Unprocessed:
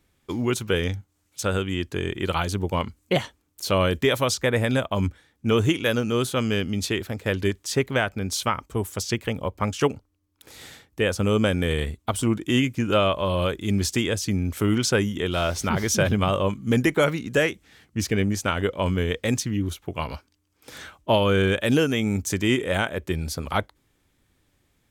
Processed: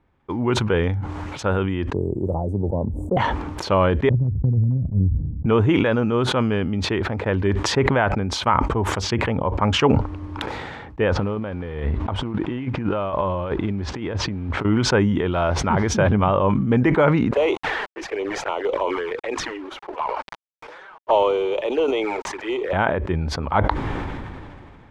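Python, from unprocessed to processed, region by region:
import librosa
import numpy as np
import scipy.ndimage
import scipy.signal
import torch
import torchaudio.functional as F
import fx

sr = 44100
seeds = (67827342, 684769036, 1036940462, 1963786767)

y = fx.chain(x, sr, fx.ellip_bandstop(low_hz=620.0, high_hz=8600.0, order=3, stop_db=50),
    fx.high_shelf(hz=12000.0, db=8.0),
    fx.band_squash(depth_pct=70), at=(1.93, 3.17))
y = fx.chain(y, sr, fx.ladder_lowpass(hz=210.0, resonance_pct=25),
    fx.low_shelf(hz=160.0, db=7.5),
    fx.transient(attack_db=11, sustain_db=2), at=(4.09, 5.46))
y = fx.chain(y, sr, fx.block_float(bits=5),
    fx.over_compress(threshold_db=-28.0, ratio=-0.5),
    fx.air_absorb(metres=110.0), at=(11.12, 14.65))
y = fx.chain(y, sr, fx.steep_highpass(hz=350.0, slope=48),
    fx.quant_companded(bits=4),
    fx.env_flanger(rest_ms=9.4, full_db=-22.0), at=(17.31, 22.73))
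y = scipy.signal.sosfilt(scipy.signal.butter(2, 1800.0, 'lowpass', fs=sr, output='sos'), y)
y = fx.peak_eq(y, sr, hz=910.0, db=7.5, octaves=0.56)
y = fx.sustainer(y, sr, db_per_s=25.0)
y = y * librosa.db_to_amplitude(2.0)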